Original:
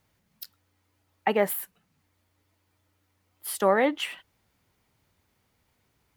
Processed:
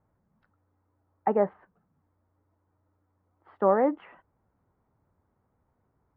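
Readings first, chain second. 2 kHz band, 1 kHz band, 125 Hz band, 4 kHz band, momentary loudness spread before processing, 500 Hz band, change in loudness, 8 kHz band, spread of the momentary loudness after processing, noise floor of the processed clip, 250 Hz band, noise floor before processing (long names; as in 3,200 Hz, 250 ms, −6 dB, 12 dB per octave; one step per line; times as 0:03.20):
−12.0 dB, −0.5 dB, can't be measured, below −25 dB, 22 LU, 0.0 dB, 0.0 dB, below −40 dB, 9 LU, −75 dBFS, 0.0 dB, −73 dBFS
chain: low-pass filter 1,300 Hz 24 dB per octave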